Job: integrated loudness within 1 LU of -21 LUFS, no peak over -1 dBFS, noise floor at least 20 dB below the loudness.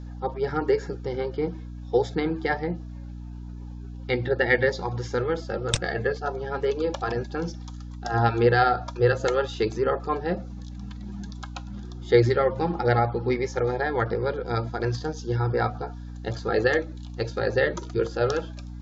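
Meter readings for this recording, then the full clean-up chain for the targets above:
hum 60 Hz; harmonics up to 300 Hz; hum level -35 dBFS; loudness -26.0 LUFS; peak -3.5 dBFS; loudness target -21.0 LUFS
-> de-hum 60 Hz, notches 5; gain +5 dB; limiter -1 dBFS

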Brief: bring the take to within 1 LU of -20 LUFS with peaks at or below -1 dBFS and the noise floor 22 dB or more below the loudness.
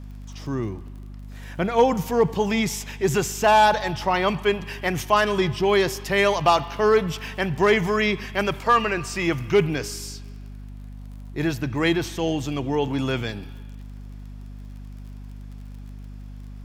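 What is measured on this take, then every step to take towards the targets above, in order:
ticks 32/s; hum 50 Hz; harmonics up to 250 Hz; hum level -36 dBFS; loudness -22.5 LUFS; peak -7.5 dBFS; loudness target -20.0 LUFS
-> de-click; notches 50/100/150/200/250 Hz; gain +2.5 dB

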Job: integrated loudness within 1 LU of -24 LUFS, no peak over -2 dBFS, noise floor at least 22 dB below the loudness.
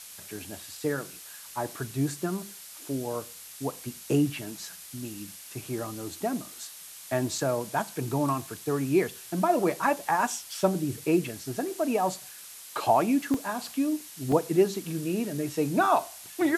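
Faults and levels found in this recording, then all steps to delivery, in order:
dropouts 4; longest dropout 2.9 ms; noise floor -46 dBFS; noise floor target -51 dBFS; loudness -29.0 LUFS; peak -9.0 dBFS; loudness target -24.0 LUFS
-> interpolate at 7.38/10.61/13.34/14.32, 2.9 ms; noise print and reduce 6 dB; gain +5 dB

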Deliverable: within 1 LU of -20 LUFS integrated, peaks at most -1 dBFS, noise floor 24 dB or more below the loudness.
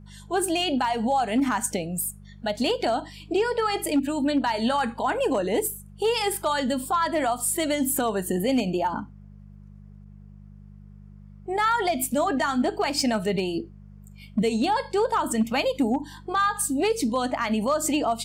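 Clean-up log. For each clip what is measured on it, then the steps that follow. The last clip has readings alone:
clipped 0.3%; flat tops at -16.0 dBFS; hum 50 Hz; harmonics up to 200 Hz; hum level -43 dBFS; loudness -25.0 LUFS; peak -16.0 dBFS; loudness target -20.0 LUFS
-> clip repair -16 dBFS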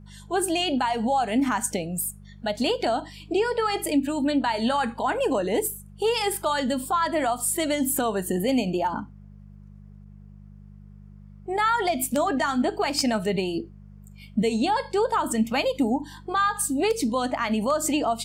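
clipped 0.0%; hum 50 Hz; harmonics up to 200 Hz; hum level -43 dBFS
-> de-hum 50 Hz, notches 4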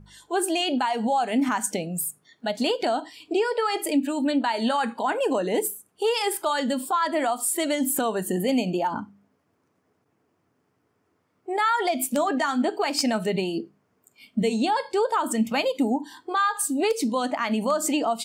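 hum none; loudness -25.0 LUFS; peak -7.0 dBFS; loudness target -20.0 LUFS
-> gain +5 dB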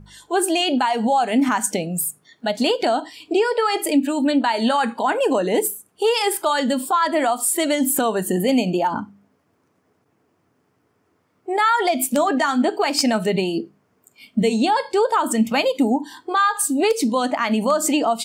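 loudness -20.0 LUFS; peak -2.0 dBFS; noise floor -66 dBFS

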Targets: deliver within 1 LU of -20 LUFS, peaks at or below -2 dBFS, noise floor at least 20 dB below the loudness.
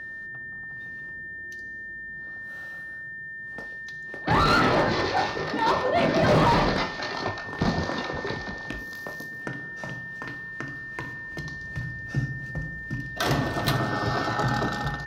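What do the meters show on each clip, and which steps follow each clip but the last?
clipped 0.5%; flat tops at -15.0 dBFS; steady tone 1800 Hz; tone level -35 dBFS; loudness -27.5 LUFS; peak -15.0 dBFS; loudness target -20.0 LUFS
-> clip repair -15 dBFS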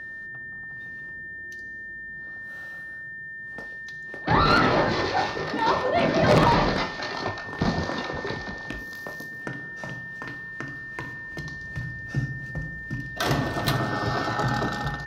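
clipped 0.0%; steady tone 1800 Hz; tone level -35 dBFS
-> notch 1800 Hz, Q 30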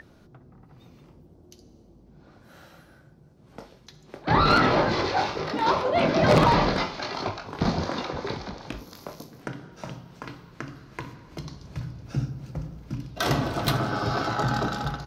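steady tone none; loudness -25.0 LUFS; peak -6.0 dBFS; loudness target -20.0 LUFS
-> gain +5 dB; limiter -2 dBFS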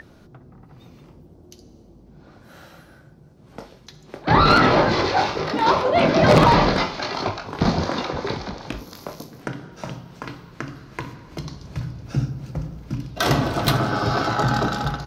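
loudness -20.0 LUFS; peak -2.0 dBFS; noise floor -49 dBFS

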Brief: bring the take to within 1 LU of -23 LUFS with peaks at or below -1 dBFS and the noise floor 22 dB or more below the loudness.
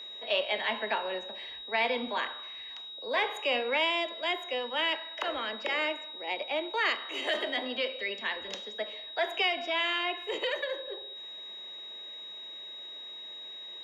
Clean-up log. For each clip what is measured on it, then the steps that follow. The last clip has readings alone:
steady tone 3800 Hz; tone level -41 dBFS; loudness -32.0 LUFS; peak -17.0 dBFS; loudness target -23.0 LUFS
-> notch 3800 Hz, Q 30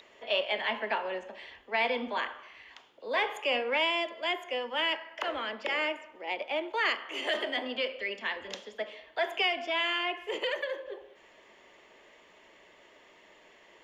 steady tone none; loudness -31.5 LUFS; peak -17.0 dBFS; loudness target -23.0 LUFS
-> gain +8.5 dB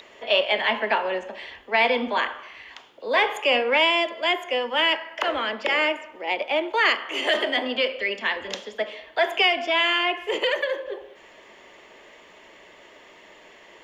loudness -23.0 LUFS; peak -8.5 dBFS; noise floor -50 dBFS

